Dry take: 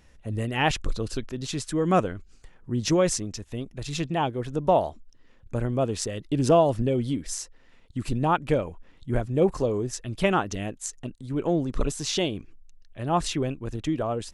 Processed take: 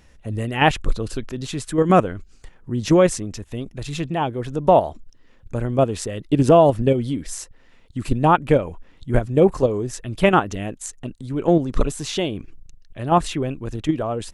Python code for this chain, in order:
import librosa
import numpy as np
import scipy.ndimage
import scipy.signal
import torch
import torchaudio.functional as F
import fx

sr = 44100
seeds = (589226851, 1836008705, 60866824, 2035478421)

p1 = fx.dynamic_eq(x, sr, hz=5400.0, q=1.2, threshold_db=-48.0, ratio=4.0, max_db=-7)
p2 = fx.level_steps(p1, sr, step_db=23)
p3 = p1 + (p2 * 10.0 ** (2.0 / 20.0))
y = p3 * 10.0 ** (2.0 / 20.0)